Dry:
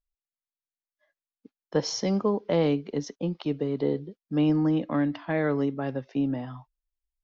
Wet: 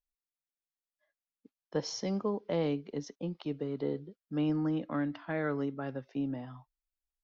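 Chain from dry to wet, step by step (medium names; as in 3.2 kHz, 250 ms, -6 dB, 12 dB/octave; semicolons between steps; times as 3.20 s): 3.58–6.07 s: peaking EQ 1.4 kHz +7 dB 0.28 oct; trim -7.5 dB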